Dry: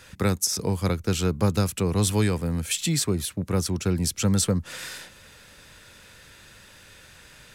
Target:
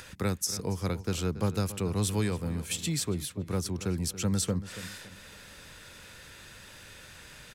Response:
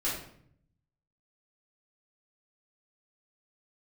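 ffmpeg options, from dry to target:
-filter_complex "[0:a]acompressor=mode=upward:threshold=-34dB:ratio=2.5,asplit=2[a][b];[b]adelay=281,lowpass=f=3.7k:p=1,volume=-14dB,asplit=2[c][d];[d]adelay=281,lowpass=f=3.7k:p=1,volume=0.37,asplit=2[e][f];[f]adelay=281,lowpass=f=3.7k:p=1,volume=0.37,asplit=2[g][h];[h]adelay=281,lowpass=f=3.7k:p=1,volume=0.37[i];[c][e][g][i]amix=inputs=4:normalize=0[j];[a][j]amix=inputs=2:normalize=0,volume=-6.5dB"

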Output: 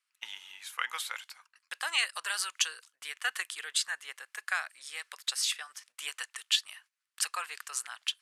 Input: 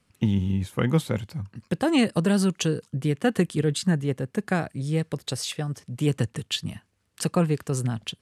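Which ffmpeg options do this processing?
-af "highpass=f=1.2k:w=0.5412,highpass=f=1.2k:w=1.3066,agate=range=-12dB:threshold=-59dB:ratio=16:detection=peak,volume=1.5dB"

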